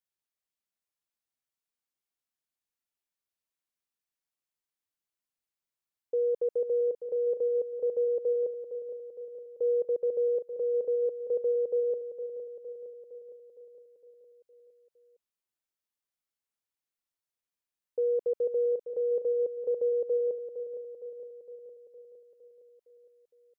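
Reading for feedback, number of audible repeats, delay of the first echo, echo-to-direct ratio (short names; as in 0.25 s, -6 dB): 60%, 6, 0.461 s, -8.0 dB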